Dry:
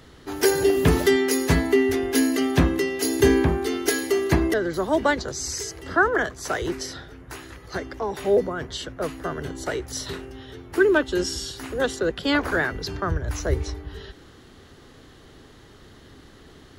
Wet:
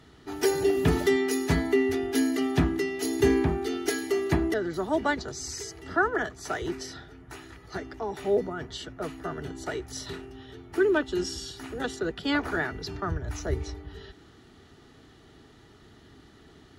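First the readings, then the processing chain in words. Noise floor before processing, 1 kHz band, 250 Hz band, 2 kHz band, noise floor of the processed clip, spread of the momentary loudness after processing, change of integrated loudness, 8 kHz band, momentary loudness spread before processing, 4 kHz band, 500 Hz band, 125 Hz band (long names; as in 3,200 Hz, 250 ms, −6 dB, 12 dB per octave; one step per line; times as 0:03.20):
−49 dBFS, −4.5 dB, −4.0 dB, −6.0 dB, −54 dBFS, 15 LU, −5.0 dB, −7.5 dB, 15 LU, −6.0 dB, −5.0 dB, −5.0 dB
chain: high-shelf EQ 11,000 Hz −8 dB
notch comb filter 530 Hz
level −4 dB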